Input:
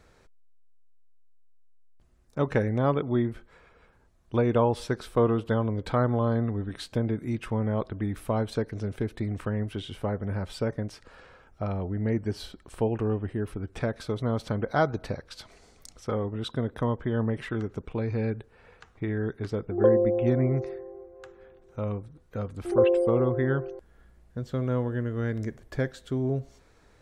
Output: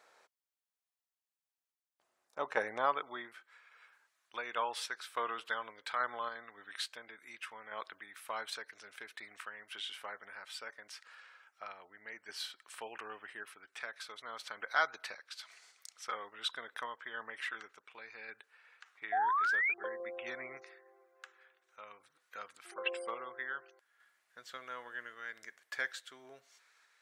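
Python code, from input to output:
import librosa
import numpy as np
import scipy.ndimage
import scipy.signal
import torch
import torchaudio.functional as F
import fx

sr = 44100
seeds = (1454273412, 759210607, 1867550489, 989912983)

y = fx.filter_sweep_highpass(x, sr, from_hz=730.0, to_hz=1600.0, start_s=2.23, end_s=3.61, q=1.2)
y = fx.spec_paint(y, sr, seeds[0], shape='rise', start_s=19.12, length_s=0.62, low_hz=690.0, high_hz=2500.0, level_db=-31.0)
y = fx.tremolo_random(y, sr, seeds[1], hz=3.5, depth_pct=55)
y = F.gain(torch.from_numpy(y), 1.5).numpy()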